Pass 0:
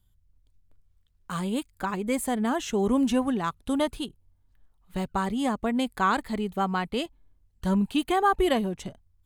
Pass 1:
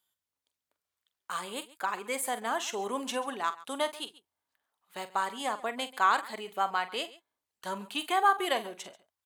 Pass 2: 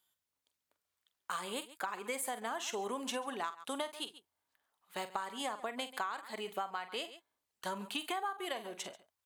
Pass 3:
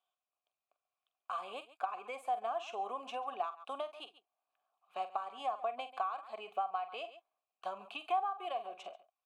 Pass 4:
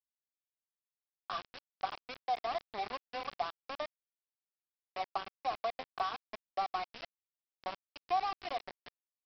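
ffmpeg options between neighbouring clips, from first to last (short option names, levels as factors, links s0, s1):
-af "highpass=670,aecho=1:1:45|137:0.237|0.106"
-af "acompressor=threshold=0.0178:ratio=16,volume=1.12"
-filter_complex "[0:a]asplit=3[s0][s1][s2];[s0]bandpass=f=730:t=q:w=8,volume=1[s3];[s1]bandpass=f=1090:t=q:w=8,volume=0.501[s4];[s2]bandpass=f=2440:t=q:w=8,volume=0.355[s5];[s3][s4][s5]amix=inputs=3:normalize=0,volume=2.82"
-filter_complex "[0:a]acrossover=split=2600[s0][s1];[s1]acompressor=threshold=0.00178:ratio=4:attack=1:release=60[s2];[s0][s2]amix=inputs=2:normalize=0,aresample=11025,aeval=exprs='val(0)*gte(abs(val(0)),0.0133)':c=same,aresample=44100,volume=1.12"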